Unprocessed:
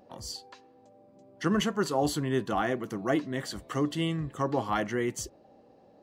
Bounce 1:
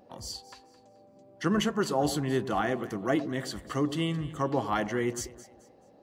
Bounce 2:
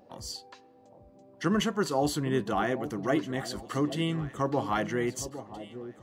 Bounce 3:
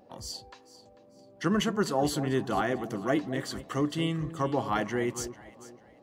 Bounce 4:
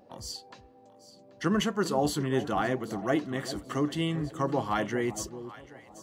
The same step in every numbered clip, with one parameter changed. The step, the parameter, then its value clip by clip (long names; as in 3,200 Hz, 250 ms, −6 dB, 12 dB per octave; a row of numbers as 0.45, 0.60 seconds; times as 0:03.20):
delay that swaps between a low-pass and a high-pass, delay time: 108, 810, 222, 392 milliseconds